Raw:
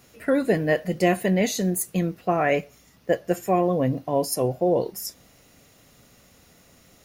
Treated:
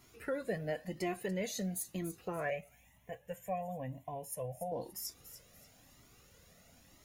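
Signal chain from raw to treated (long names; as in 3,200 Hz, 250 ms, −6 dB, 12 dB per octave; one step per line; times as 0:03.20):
downward compressor 2 to 1, threshold −31 dBFS, peak gain reduction 9 dB
0:02.50–0:04.72: phaser with its sweep stopped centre 1,300 Hz, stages 6
delay with a high-pass on its return 288 ms, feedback 32%, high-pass 5,400 Hz, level −10 dB
flanger whose copies keep moving one way rising 1 Hz
level −3 dB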